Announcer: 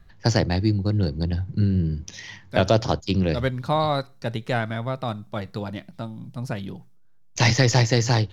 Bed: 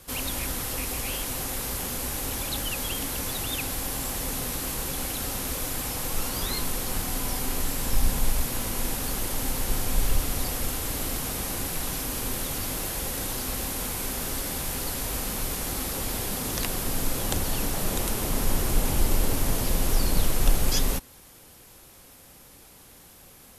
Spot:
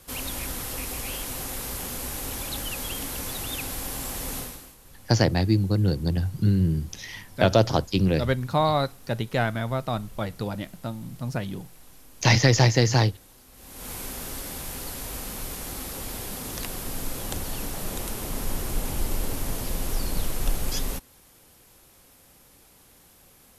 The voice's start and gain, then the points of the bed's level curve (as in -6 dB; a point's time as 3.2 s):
4.85 s, 0.0 dB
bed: 4.39 s -2 dB
4.78 s -22 dB
13.51 s -22 dB
13.91 s -4.5 dB